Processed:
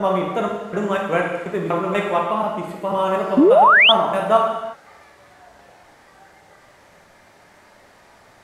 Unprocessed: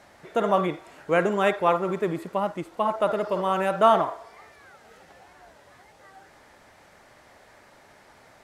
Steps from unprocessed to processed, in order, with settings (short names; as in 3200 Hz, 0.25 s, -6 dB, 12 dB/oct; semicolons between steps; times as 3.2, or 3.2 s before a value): slices in reverse order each 0.243 s, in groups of 3; non-linear reverb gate 0.39 s falling, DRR -1 dB; painted sound rise, 3.37–3.92, 240–3600 Hz -11 dBFS